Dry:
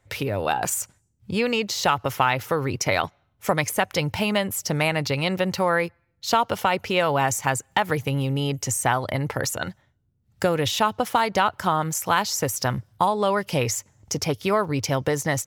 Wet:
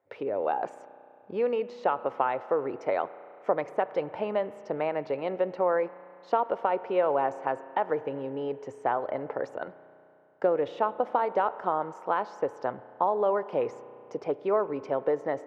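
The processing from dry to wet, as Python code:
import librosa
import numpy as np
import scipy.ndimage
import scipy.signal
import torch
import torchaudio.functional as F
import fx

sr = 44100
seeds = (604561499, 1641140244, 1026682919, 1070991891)

y = fx.ladder_bandpass(x, sr, hz=570.0, resonance_pct=25)
y = fx.rev_spring(y, sr, rt60_s=2.9, pass_ms=(33,), chirp_ms=65, drr_db=15.0)
y = F.gain(torch.from_numpy(y), 8.0).numpy()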